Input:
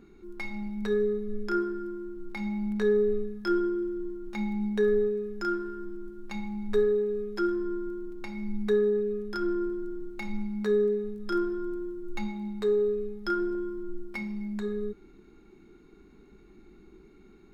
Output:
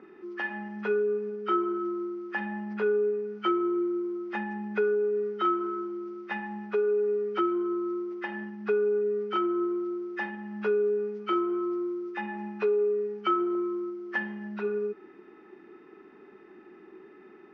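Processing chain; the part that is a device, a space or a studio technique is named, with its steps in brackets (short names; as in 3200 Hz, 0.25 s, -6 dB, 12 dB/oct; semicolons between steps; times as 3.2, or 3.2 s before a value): hearing aid with frequency lowering (nonlinear frequency compression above 1100 Hz 1.5:1; compressor 4:1, threshold -30 dBFS, peak gain reduction 9 dB; speaker cabinet 330–5100 Hz, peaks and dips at 380 Hz +3 dB, 600 Hz +3 dB, 880 Hz +4 dB, 1400 Hz +5 dB, 2100 Hz +8 dB, 3900 Hz -5 dB); gain +5.5 dB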